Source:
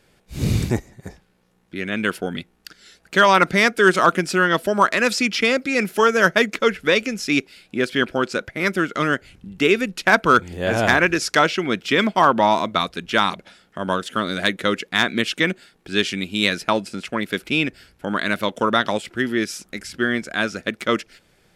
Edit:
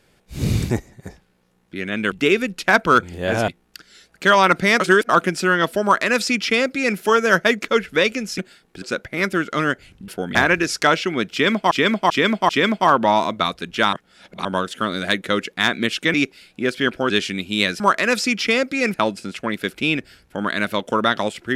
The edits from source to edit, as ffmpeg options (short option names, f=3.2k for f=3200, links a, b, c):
-filter_complex "[0:a]asplit=18[a][b][c][d][e][f][g][h][i][j][k][l][m][n][o][p][q][r];[a]atrim=end=2.122[s];[b]atrim=start=9.508:end=10.872[t];[c]atrim=start=2.388:end=3.712[u];[d]atrim=start=3.708:end=4.002,asetpts=PTS-STARTPTS,areverse[v];[e]atrim=start=3.998:end=7.292[w];[f]atrim=start=15.488:end=15.932[x];[g]atrim=start=8.248:end=9.512[y];[h]atrim=start=2.118:end=2.392[z];[i]atrim=start=10.868:end=12.232[aa];[j]atrim=start=11.838:end=12.232[ab];[k]atrim=start=11.838:end=12.232[ac];[l]atrim=start=11.838:end=13.282[ad];[m]atrim=start=13.278:end=13.802,asetpts=PTS-STARTPTS,areverse[ae];[n]atrim=start=13.798:end=15.492[af];[o]atrim=start=7.288:end=8.252[ag];[p]atrim=start=15.928:end=16.632[ah];[q]atrim=start=4.738:end=5.882[ai];[r]atrim=start=16.628[aj];[s][t]acrossfade=d=0.004:c1=hsin:c2=hsin[ak];[ak][u]acrossfade=d=0.004:c1=hsin:c2=hsin[al];[al][v]acrossfade=d=0.004:c1=hsin:c2=hsin[am];[am][w]acrossfade=d=0.004:c1=hsin:c2=hsin[an];[an][x]acrossfade=d=0.004:c1=hsin:c2=hsin[ao];[ao][y]acrossfade=d=0.004:c1=hsin:c2=hsin[ap];[ap][z]acrossfade=d=0.004:c1=hsin:c2=hsin[aq];[aq][aa]acrossfade=d=0.004:c1=hsin:c2=hsin[ar];[ar][ab]acrossfade=d=0.004:c1=hsin:c2=hsin[as];[as][ac]acrossfade=d=0.004:c1=hsin:c2=hsin[at];[at][ad]acrossfade=d=0.004:c1=hsin:c2=hsin[au];[au][ae]acrossfade=d=0.004:c1=hsin:c2=hsin[av];[av][af]acrossfade=d=0.004:c1=hsin:c2=hsin[aw];[aw][ag]acrossfade=d=0.004:c1=hsin:c2=hsin[ax];[ax][ah]acrossfade=d=0.004:c1=hsin:c2=hsin[ay];[ay][ai]acrossfade=d=0.004:c1=hsin:c2=hsin[az];[az][aj]acrossfade=d=0.004:c1=hsin:c2=hsin"